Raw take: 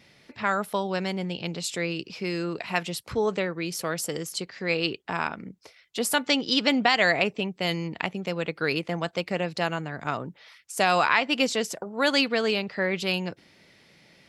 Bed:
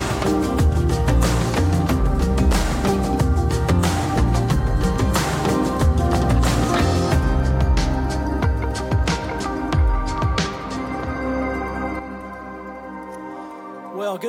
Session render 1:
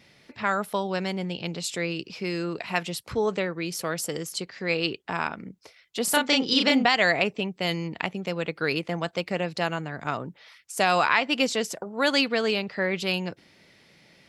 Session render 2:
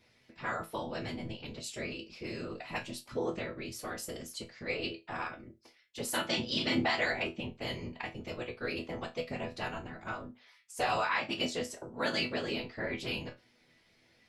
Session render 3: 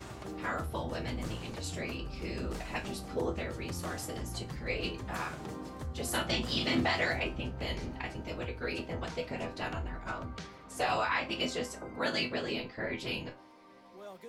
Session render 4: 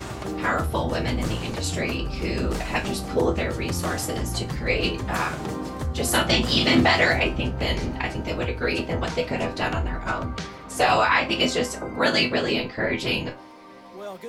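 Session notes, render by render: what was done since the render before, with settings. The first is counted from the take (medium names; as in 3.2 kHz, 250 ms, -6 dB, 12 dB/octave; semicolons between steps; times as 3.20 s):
6.04–6.85 s: doubling 34 ms -2.5 dB
whisper effect; chord resonator E2 sus4, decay 0.22 s
add bed -23 dB
trim +11.5 dB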